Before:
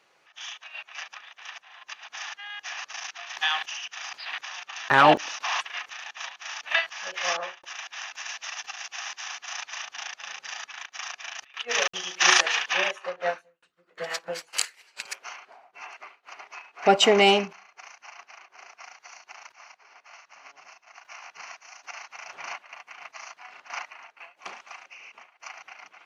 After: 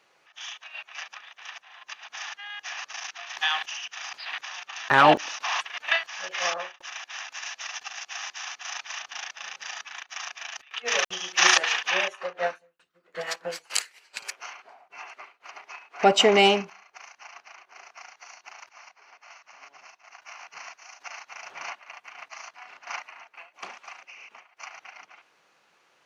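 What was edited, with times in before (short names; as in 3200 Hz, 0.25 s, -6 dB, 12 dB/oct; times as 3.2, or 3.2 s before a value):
5.78–6.61 cut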